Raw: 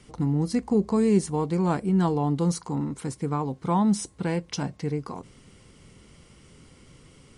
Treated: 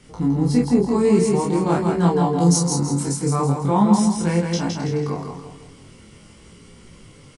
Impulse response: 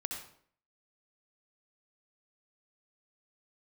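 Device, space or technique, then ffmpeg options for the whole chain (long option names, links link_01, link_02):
double-tracked vocal: -filter_complex "[0:a]asettb=1/sr,asplit=3[link_01][link_02][link_03];[link_01]atrim=end=2.404[link_04];[link_02]atrim=start=2.4:end=3.56,asetpts=PTS-STARTPTS,afade=type=in:duration=0.004:curve=qsin,afade=type=out:start_time=1.156:duration=0.004:curve=qsin,highshelf=frequency=4200:width_type=q:width=1.5:gain=8[link_05];[link_03]atrim=start=3.556[link_06];[link_04][link_05]acrossfade=duration=0.004:curve1=hsin:curve2=qsin[link_07];[link_07][link_06]acrossfade=duration=0.004:curve1=qsin:curve2=hsin,asplit=2[link_08][link_09];[link_09]adelay=29,volume=-3dB[link_10];[link_08][link_10]amix=inputs=2:normalize=0,aecho=1:1:164|328|492|656|820:0.631|0.259|0.106|0.0435|0.0178,flanger=delay=17.5:depth=4.7:speed=0.45,volume=6dB"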